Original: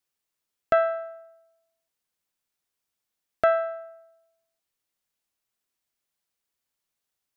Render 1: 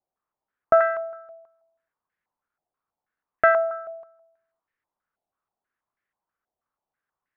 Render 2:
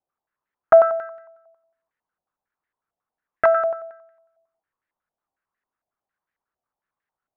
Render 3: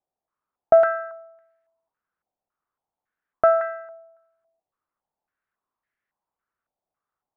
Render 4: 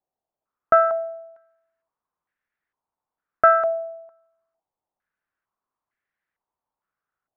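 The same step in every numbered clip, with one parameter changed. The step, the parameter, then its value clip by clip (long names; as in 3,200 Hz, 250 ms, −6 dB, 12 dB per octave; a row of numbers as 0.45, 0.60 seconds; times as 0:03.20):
low-pass on a step sequencer, speed: 6.2, 11, 3.6, 2.2 Hertz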